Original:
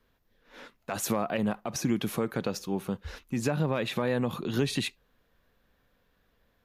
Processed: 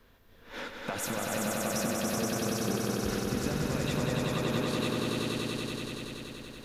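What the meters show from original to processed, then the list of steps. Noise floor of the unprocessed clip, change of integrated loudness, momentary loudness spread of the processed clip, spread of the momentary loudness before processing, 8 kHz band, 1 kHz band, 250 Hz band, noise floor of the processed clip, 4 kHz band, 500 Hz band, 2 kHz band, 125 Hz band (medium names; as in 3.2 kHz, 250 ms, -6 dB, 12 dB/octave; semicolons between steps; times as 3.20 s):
-71 dBFS, -1.0 dB, 9 LU, 7 LU, +3.5 dB, +0.5 dB, -0.5 dB, -58 dBFS, +2.5 dB, -0.5 dB, +2.0 dB, -0.5 dB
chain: compression 12:1, threshold -42 dBFS, peak gain reduction 20.5 dB; echo with a slow build-up 95 ms, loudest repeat 5, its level -3 dB; trim +9 dB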